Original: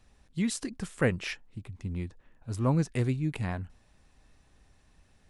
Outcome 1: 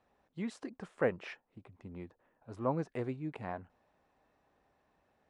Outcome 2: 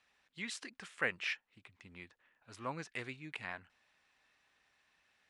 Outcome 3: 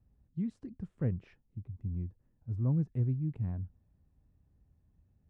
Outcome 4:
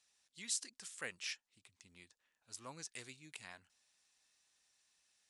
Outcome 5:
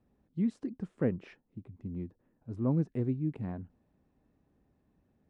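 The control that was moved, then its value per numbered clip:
band-pass filter, frequency: 690 Hz, 2.2 kHz, 100 Hz, 6.6 kHz, 260 Hz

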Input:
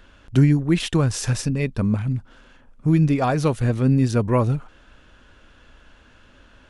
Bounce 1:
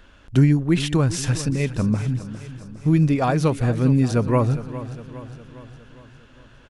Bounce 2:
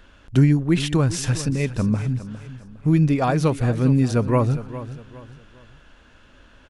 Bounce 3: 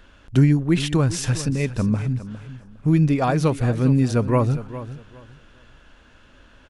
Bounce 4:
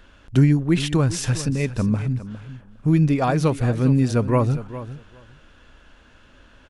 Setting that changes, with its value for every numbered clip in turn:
feedback delay, feedback: 55%, 35%, 23%, 15%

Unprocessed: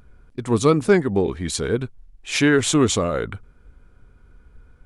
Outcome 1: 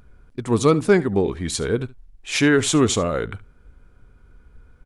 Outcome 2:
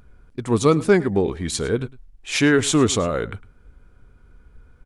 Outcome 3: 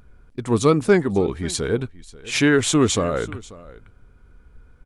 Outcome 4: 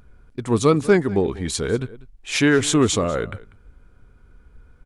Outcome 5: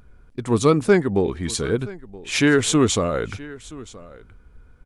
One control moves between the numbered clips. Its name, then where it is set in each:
delay, time: 71 ms, 106 ms, 538 ms, 194 ms, 974 ms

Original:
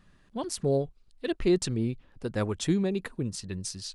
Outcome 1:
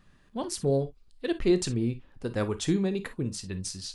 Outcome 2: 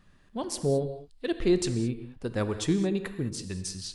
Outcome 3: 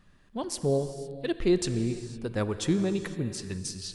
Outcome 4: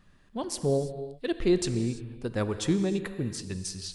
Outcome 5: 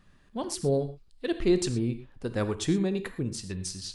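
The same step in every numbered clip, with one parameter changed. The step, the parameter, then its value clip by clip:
gated-style reverb, gate: 80 ms, 240 ms, 530 ms, 360 ms, 140 ms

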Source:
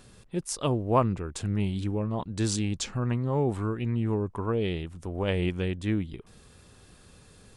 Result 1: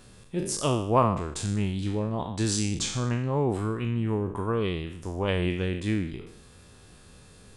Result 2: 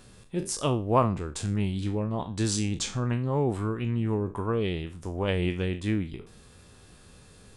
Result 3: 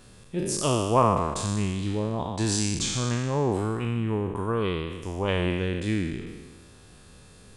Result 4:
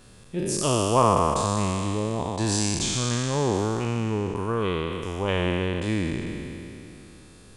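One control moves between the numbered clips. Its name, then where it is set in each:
spectral sustain, RT60: 0.65 s, 0.31 s, 1.41 s, 2.99 s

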